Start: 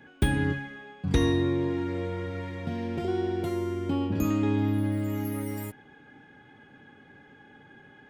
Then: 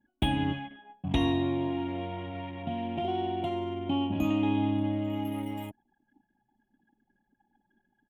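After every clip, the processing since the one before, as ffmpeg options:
ffmpeg -i in.wav -af "anlmdn=0.251,firequalizer=gain_entry='entry(110,0);entry(300,6);entry(460,-8);entry(660,14);entry(1500,-5);entry(3000,15);entry(4600,-9);entry(7200,-5)':delay=0.05:min_phase=1,volume=-5.5dB" out.wav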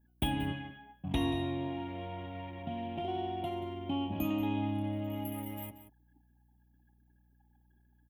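ffmpeg -i in.wav -af "aeval=exprs='val(0)+0.000794*(sin(2*PI*60*n/s)+sin(2*PI*2*60*n/s)/2+sin(2*PI*3*60*n/s)/3+sin(2*PI*4*60*n/s)/4+sin(2*PI*5*60*n/s)/5)':channel_layout=same,aexciter=amount=4.8:drive=6.4:freq=10000,aecho=1:1:182:0.224,volume=-5dB" out.wav

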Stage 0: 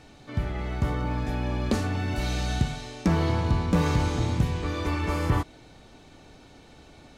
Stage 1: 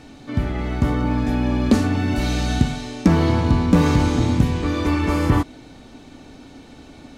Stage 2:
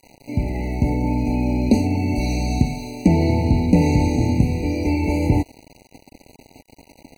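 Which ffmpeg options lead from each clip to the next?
ffmpeg -i in.wav -af "equalizer=frequency=260:width=3:gain=9.5,volume=5.5dB" out.wav
ffmpeg -i in.wav -af "aeval=exprs='val(0)*gte(abs(val(0)),0.0141)':channel_layout=same,afftfilt=real='re*eq(mod(floor(b*sr/1024/970),2),0)':imag='im*eq(mod(floor(b*sr/1024/970),2),0)':win_size=1024:overlap=0.75" out.wav

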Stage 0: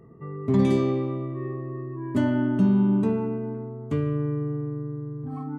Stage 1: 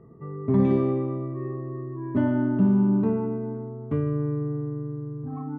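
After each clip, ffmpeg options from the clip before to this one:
ffmpeg -i in.wav -af "lowpass=1600" out.wav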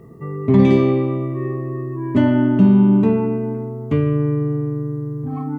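ffmpeg -i in.wav -af "aexciter=amount=3.4:drive=6.4:freq=2100,volume=8dB" out.wav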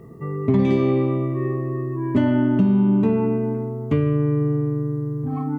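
ffmpeg -i in.wav -af "acompressor=threshold=-14dB:ratio=6" out.wav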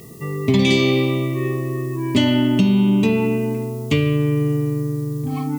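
ffmpeg -i in.wav -af "aexciter=amount=8.9:drive=6.2:freq=2300,volume=1.5dB" out.wav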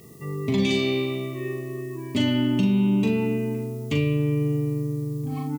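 ffmpeg -i in.wav -filter_complex "[0:a]asplit=2[link_01][link_02];[link_02]adelay=41,volume=-5.5dB[link_03];[link_01][link_03]amix=inputs=2:normalize=0,volume=-8dB" out.wav

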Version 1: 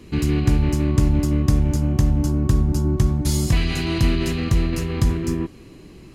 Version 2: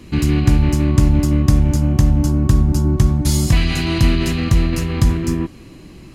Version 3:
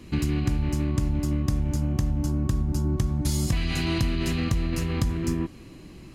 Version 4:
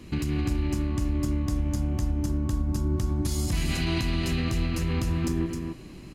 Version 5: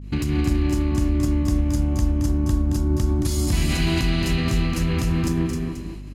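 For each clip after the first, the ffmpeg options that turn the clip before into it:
ffmpeg -i in.wav -af "equalizer=frequency=420:width=4.7:gain=-7,volume=4.5dB" out.wav
ffmpeg -i in.wav -af "acompressor=threshold=-15dB:ratio=6,volume=-5.5dB" out.wav
ffmpeg -i in.wav -af "alimiter=limit=-19dB:level=0:latency=1,aecho=1:1:263:0.562" out.wav
ffmpeg -i in.wav -af "aecho=1:1:222:0.422,agate=range=-33dB:threshold=-36dB:ratio=3:detection=peak,aeval=exprs='val(0)+0.0112*(sin(2*PI*50*n/s)+sin(2*PI*2*50*n/s)/2+sin(2*PI*3*50*n/s)/3+sin(2*PI*4*50*n/s)/4+sin(2*PI*5*50*n/s)/5)':channel_layout=same,volume=4.5dB" out.wav

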